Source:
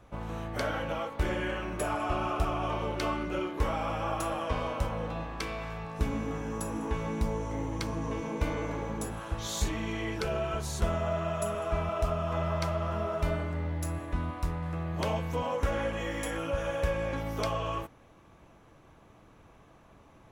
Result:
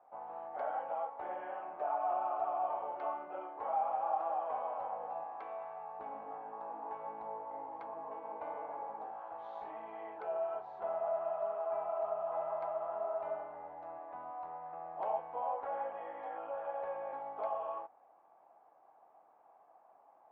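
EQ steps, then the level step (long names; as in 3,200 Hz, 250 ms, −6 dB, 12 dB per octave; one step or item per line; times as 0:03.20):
four-pole ladder band-pass 820 Hz, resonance 75%
high-frequency loss of the air 240 metres
tilt shelving filter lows +3.5 dB, about 820 Hz
+4.0 dB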